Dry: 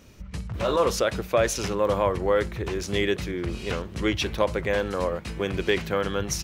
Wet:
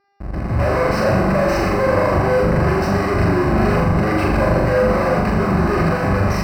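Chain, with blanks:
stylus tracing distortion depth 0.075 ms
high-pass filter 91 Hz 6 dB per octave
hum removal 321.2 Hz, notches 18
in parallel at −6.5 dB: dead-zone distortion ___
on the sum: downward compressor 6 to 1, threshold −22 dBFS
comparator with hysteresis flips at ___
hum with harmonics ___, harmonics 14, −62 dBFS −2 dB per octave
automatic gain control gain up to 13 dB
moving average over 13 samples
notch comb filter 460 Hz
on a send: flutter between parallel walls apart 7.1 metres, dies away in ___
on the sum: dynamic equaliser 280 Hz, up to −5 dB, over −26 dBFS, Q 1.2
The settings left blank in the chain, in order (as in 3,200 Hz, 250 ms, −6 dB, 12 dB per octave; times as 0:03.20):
−48.5 dBFS, −38.5 dBFS, 400 Hz, 0.82 s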